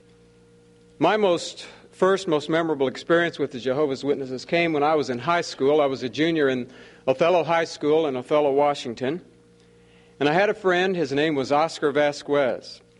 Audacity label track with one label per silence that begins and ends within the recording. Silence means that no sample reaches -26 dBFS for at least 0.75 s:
9.170000	10.210000	silence